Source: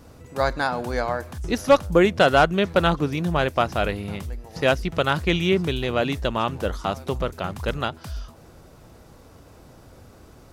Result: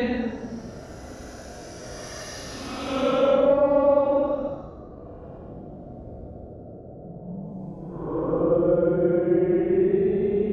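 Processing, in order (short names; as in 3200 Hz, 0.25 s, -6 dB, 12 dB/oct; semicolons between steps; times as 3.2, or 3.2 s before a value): treble ducked by the level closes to 450 Hz, closed at -16.5 dBFS; RIAA curve recording; buzz 60 Hz, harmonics 12, -41 dBFS -2 dB/oct; Paulstretch 20×, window 0.05 s, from 1.54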